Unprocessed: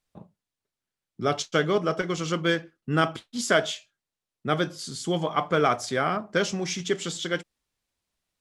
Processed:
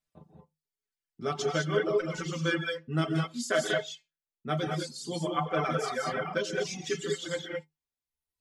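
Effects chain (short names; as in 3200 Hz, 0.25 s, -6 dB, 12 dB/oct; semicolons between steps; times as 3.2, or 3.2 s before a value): metallic resonator 76 Hz, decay 0.21 s, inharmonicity 0.008; non-linear reverb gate 0.24 s rising, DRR -1 dB; reverb removal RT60 1.2 s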